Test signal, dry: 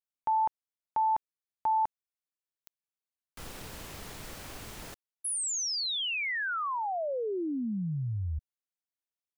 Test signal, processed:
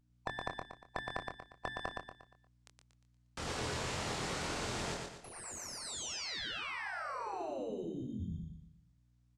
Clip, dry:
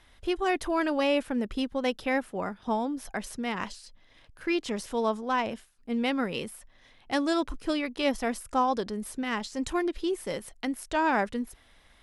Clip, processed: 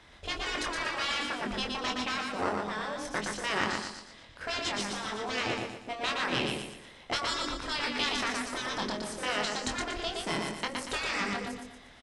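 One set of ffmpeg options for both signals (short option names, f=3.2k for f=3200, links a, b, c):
-filter_complex "[0:a]aeval=exprs='0.224*(cos(1*acos(clip(val(0)/0.224,-1,1)))-cos(1*PI/2))+0.0141*(cos(8*acos(clip(val(0)/0.224,-1,1)))-cos(8*PI/2))':c=same,highpass=f=95:p=1,bandreject=f=50:t=h:w=6,bandreject=f=100:t=h:w=6,bandreject=f=150:t=h:w=6,bandreject=f=200:t=h:w=6,bandreject=f=250:t=h:w=6,bandreject=f=300:t=h:w=6,bandreject=f=350:t=h:w=6,bandreject=f=400:t=h:w=6,afftfilt=real='re*lt(hypot(re,im),0.1)':imag='im*lt(hypot(re,im),0.1)':win_size=1024:overlap=0.75,asplit=2[a][b];[b]acrusher=samples=13:mix=1:aa=0.000001,volume=-10.5dB[c];[a][c]amix=inputs=2:normalize=0,lowpass=f=8.1k:w=0.5412,lowpass=f=8.1k:w=1.3066,aeval=exprs='val(0)+0.0002*(sin(2*PI*60*n/s)+sin(2*PI*2*60*n/s)/2+sin(2*PI*3*60*n/s)/3+sin(2*PI*4*60*n/s)/4+sin(2*PI*5*60*n/s)/5)':c=same,asplit=2[d][e];[e]adelay=24,volume=-5.5dB[f];[d][f]amix=inputs=2:normalize=0,asplit=2[g][h];[h]aecho=0:1:118|236|354|472|590:0.668|0.274|0.112|0.0461|0.0189[i];[g][i]amix=inputs=2:normalize=0,volume=3.5dB"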